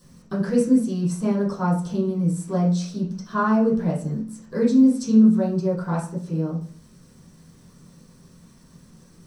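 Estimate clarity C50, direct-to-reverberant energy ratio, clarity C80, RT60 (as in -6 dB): 7.0 dB, -11.0 dB, 11.5 dB, 0.45 s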